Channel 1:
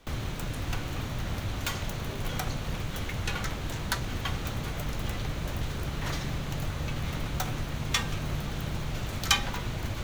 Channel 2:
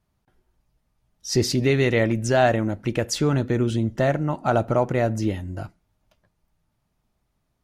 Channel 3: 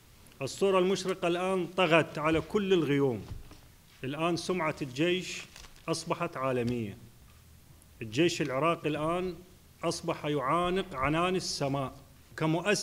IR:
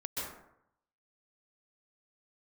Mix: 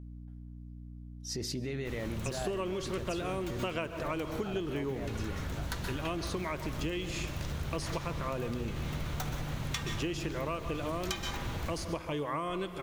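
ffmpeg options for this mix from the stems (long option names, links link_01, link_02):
-filter_complex "[0:a]adelay=1800,volume=-6dB,asplit=2[link_01][link_02];[link_02]volume=-3.5dB[link_03];[1:a]alimiter=limit=-18dB:level=0:latency=1:release=82,aeval=exprs='val(0)+0.0178*(sin(2*PI*60*n/s)+sin(2*PI*2*60*n/s)/2+sin(2*PI*3*60*n/s)/3+sin(2*PI*4*60*n/s)/4+sin(2*PI*5*60*n/s)/5)':channel_layout=same,volume=-9.5dB,asplit=3[link_04][link_05][link_06];[link_05]volume=-21dB[link_07];[2:a]adelay=1850,volume=0.5dB,asplit=2[link_08][link_09];[link_09]volume=-13.5dB[link_10];[link_06]apad=whole_len=522020[link_11];[link_01][link_11]sidechaincompress=threshold=-47dB:ratio=8:attack=16:release=293[link_12];[3:a]atrim=start_sample=2205[link_13];[link_03][link_07][link_10]amix=inputs=3:normalize=0[link_14];[link_14][link_13]afir=irnorm=-1:irlink=0[link_15];[link_12][link_04][link_08][link_15]amix=inputs=4:normalize=0,acompressor=threshold=-31dB:ratio=12"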